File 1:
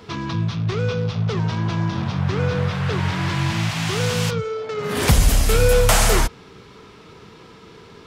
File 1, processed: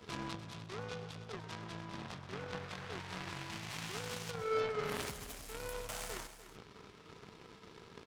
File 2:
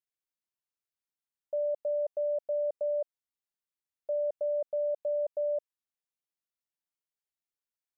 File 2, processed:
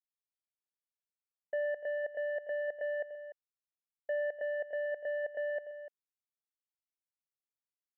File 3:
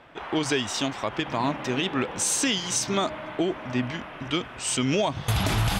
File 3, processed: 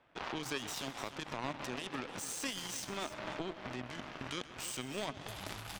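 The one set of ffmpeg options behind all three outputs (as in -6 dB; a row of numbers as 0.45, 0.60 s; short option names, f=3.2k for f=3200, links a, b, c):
-filter_complex "[0:a]acompressor=threshold=-31dB:ratio=4,alimiter=level_in=5dB:limit=-24dB:level=0:latency=1:release=12,volume=-5dB,acrossover=split=230[a][b];[a]acompressor=threshold=-44dB:ratio=3[c];[c][b]amix=inputs=2:normalize=0,aeval=exprs='0.0596*(cos(1*acos(clip(val(0)/0.0596,-1,1)))-cos(1*PI/2))+0.0168*(cos(3*acos(clip(val(0)/0.0596,-1,1)))-cos(3*PI/2))+0.000841*(cos(7*acos(clip(val(0)/0.0596,-1,1)))-cos(7*PI/2))':c=same,aecho=1:1:127|295:0.158|0.224,volume=6.5dB"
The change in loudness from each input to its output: -21.5, -4.0, -14.0 LU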